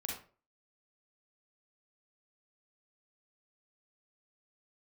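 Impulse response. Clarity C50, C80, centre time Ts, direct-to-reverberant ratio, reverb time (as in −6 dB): 2.5 dB, 9.0 dB, 39 ms, −2.0 dB, 0.40 s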